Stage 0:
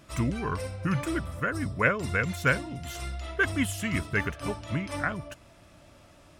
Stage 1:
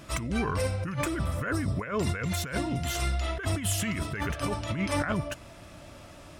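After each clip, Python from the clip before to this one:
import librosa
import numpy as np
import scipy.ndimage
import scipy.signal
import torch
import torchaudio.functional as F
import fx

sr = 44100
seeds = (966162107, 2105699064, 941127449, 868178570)

y = fx.over_compress(x, sr, threshold_db=-33.0, ratio=-1.0)
y = y * 10.0 ** (3.5 / 20.0)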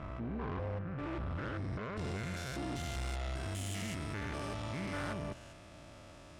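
y = fx.spec_steps(x, sr, hold_ms=200)
y = fx.filter_sweep_lowpass(y, sr, from_hz=1400.0, to_hz=9100.0, start_s=0.8, end_s=2.39, q=0.73)
y = fx.tube_stage(y, sr, drive_db=33.0, bias=0.6)
y = y * 10.0 ** (-1.5 / 20.0)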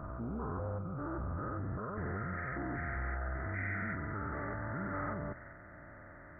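y = fx.freq_compress(x, sr, knee_hz=1200.0, ratio=4.0)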